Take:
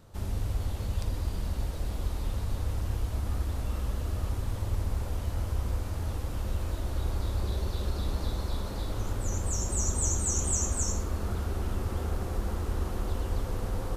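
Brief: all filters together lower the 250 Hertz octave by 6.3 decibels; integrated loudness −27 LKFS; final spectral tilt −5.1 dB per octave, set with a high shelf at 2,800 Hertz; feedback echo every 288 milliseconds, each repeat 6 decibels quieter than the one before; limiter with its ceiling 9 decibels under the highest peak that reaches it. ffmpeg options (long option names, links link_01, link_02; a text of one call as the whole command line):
ffmpeg -i in.wav -af "equalizer=frequency=250:width_type=o:gain=-9,highshelf=frequency=2800:gain=-6,alimiter=level_in=2.5dB:limit=-24dB:level=0:latency=1,volume=-2.5dB,aecho=1:1:288|576|864|1152|1440|1728:0.501|0.251|0.125|0.0626|0.0313|0.0157,volume=9dB" out.wav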